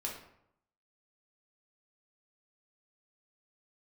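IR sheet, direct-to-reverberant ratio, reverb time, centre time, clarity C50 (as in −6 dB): −2.5 dB, 0.75 s, 33 ms, 5.0 dB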